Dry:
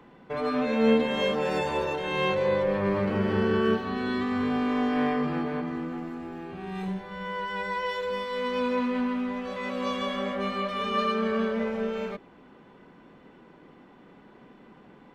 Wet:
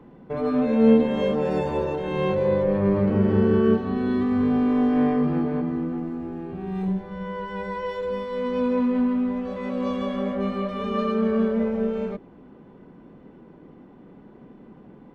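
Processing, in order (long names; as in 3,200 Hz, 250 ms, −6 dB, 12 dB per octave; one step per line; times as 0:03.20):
tilt shelving filter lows +8 dB, about 810 Hz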